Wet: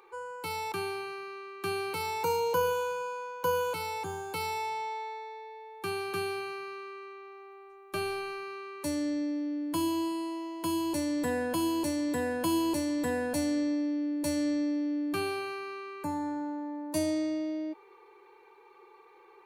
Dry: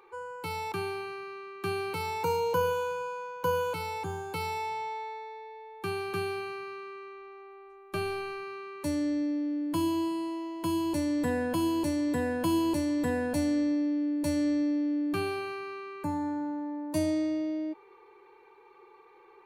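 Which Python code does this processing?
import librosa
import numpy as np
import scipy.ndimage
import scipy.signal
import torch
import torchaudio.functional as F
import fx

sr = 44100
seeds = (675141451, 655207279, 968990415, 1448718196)

y = fx.bass_treble(x, sr, bass_db=-6, treble_db=4)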